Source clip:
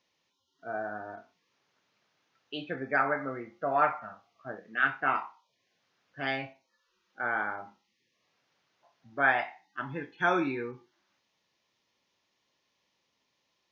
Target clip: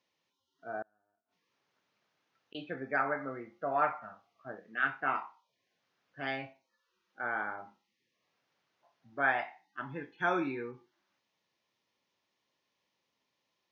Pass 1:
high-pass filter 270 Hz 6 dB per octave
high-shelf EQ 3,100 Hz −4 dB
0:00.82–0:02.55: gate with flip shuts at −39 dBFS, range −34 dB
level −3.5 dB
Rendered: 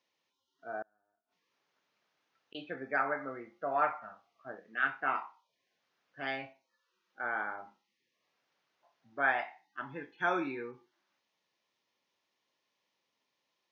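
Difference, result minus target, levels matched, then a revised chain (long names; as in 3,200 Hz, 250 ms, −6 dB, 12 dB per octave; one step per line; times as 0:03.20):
125 Hz band −5.0 dB
high-pass filter 77 Hz 6 dB per octave
high-shelf EQ 3,100 Hz −4 dB
0:00.82–0:02.55: gate with flip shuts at −39 dBFS, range −34 dB
level −3.5 dB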